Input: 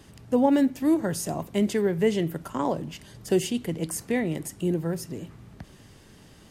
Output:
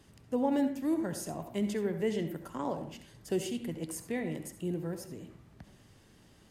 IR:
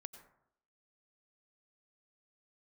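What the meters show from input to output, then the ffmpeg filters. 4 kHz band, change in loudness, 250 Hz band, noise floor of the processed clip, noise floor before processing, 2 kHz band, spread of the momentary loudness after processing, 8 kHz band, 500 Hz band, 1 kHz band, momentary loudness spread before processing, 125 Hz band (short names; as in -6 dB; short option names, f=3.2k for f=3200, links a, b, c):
-8.5 dB, -8.0 dB, -8.0 dB, -60 dBFS, -52 dBFS, -8.5 dB, 12 LU, -8.5 dB, -8.0 dB, -8.0 dB, 11 LU, -8.5 dB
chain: -filter_complex "[1:a]atrim=start_sample=2205,asetrate=61740,aresample=44100[a];[0:a][a]afir=irnorm=-1:irlink=0"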